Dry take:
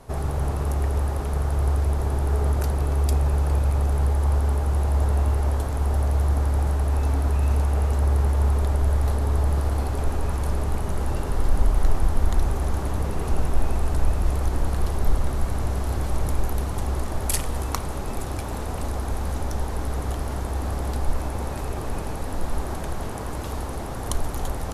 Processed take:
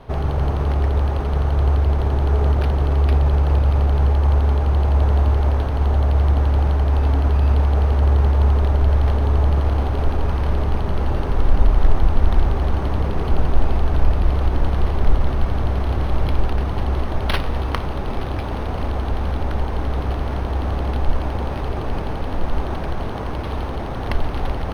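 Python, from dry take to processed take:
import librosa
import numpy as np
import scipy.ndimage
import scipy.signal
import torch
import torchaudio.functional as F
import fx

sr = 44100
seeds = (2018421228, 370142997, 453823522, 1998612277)

y = np.interp(np.arange(len(x)), np.arange(len(x))[::6], x[::6])
y = y * librosa.db_to_amplitude(5.0)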